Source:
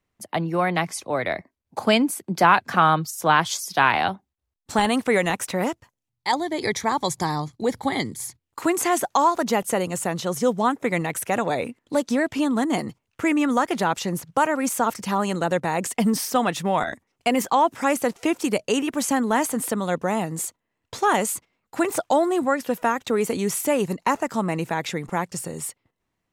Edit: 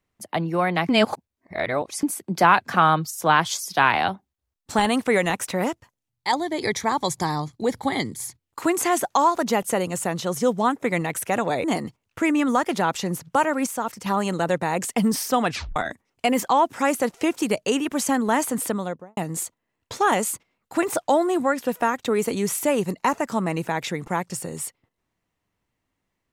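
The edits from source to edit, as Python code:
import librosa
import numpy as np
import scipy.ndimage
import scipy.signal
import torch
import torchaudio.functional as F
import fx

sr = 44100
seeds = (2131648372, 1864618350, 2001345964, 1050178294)

y = fx.studio_fade_out(x, sr, start_s=19.69, length_s=0.5)
y = fx.edit(y, sr, fx.reverse_span(start_s=0.89, length_s=1.14),
    fx.cut(start_s=11.64, length_s=1.02),
    fx.clip_gain(start_s=14.68, length_s=0.4, db=-5.0),
    fx.tape_stop(start_s=16.5, length_s=0.28), tone=tone)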